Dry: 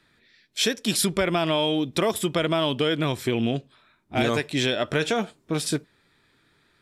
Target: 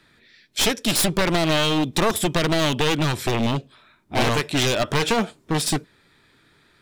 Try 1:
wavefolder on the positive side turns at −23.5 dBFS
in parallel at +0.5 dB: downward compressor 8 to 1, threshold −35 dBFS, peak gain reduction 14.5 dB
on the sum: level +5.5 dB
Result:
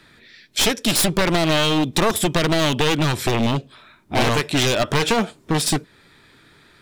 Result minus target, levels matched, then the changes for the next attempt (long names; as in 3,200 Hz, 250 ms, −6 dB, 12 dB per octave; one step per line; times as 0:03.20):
downward compressor: peak gain reduction +14.5 dB
remove: downward compressor 8 to 1, threshold −35 dBFS, peak gain reduction 14.5 dB